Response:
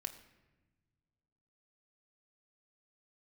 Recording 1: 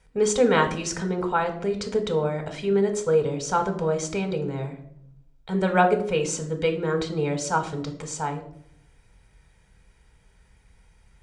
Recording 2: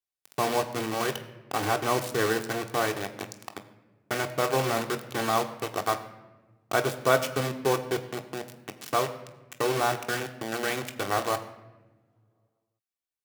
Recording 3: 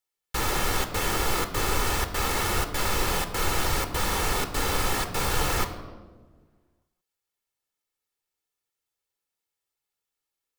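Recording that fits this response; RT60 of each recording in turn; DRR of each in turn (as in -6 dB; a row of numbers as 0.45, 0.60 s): 2; 0.70, 1.1, 1.5 s; 5.0, 4.5, 7.5 dB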